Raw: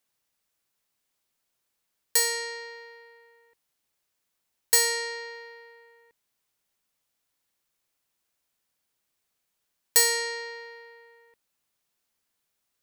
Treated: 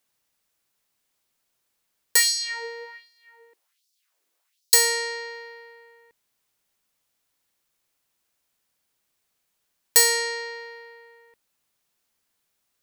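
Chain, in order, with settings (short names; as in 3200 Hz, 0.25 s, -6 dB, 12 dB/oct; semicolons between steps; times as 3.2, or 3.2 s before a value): 2.16–4.74 LFO high-pass sine 1.3 Hz 320–5100 Hz; gain +3.5 dB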